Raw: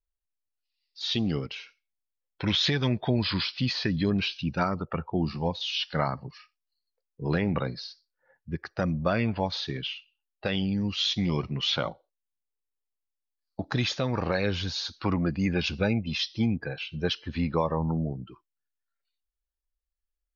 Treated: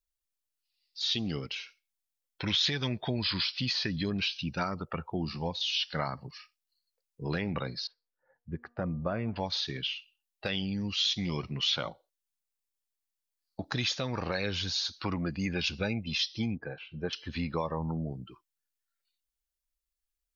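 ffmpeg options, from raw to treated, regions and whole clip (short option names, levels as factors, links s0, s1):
-filter_complex "[0:a]asettb=1/sr,asplit=3[s0][s1][s2];[s0]atrim=end=7.874[s3];[s1]atrim=start=7.87:end=9.36,asetpts=PTS-STARTPTS,afade=t=in:d=0.004:c=qsin,afade=t=out:st=1.486:d=0.004:c=qsin,lowpass=1200,bandreject=f=238.7:t=h:w=4,bandreject=f=477.4:t=h:w=4,bandreject=f=716.1:t=h:w=4,bandreject=f=954.8:t=h:w=4,bandreject=f=1193.5:t=h:w=4[s4];[s2]atrim=start=9.356[s5];[s3][s4]acrossfade=d=0.004:c1=hsin:c2=qsin[s6];[s6][s5]acrossfade=d=0.004:c1=qsin:c2=hsin,asettb=1/sr,asplit=3[s7][s8][s9];[s7]atrim=end=16.554[s10];[s8]atrim=start=16.55:end=17.13,asetpts=PTS-STARTPTS,afade=t=in:d=0.004:c=qsin,afade=t=out:st=0.576:d=0.004:c=qsin,lowpass=1400,equalizer=f=100:w=1.2:g=-5,acompressor=mode=upward:threshold=0.00501:ratio=2.5:attack=3.2:release=140:knee=2.83:detection=peak[s11];[s9]atrim=start=17.126[s12];[s10][s11]acrossfade=d=0.004:c1=hsin:c2=qsin[s13];[s13][s12]acrossfade=d=0.004:c1=qsin:c2=hsin,highshelf=f=2300:g=9.5,acompressor=threshold=0.0398:ratio=1.5,volume=0.631"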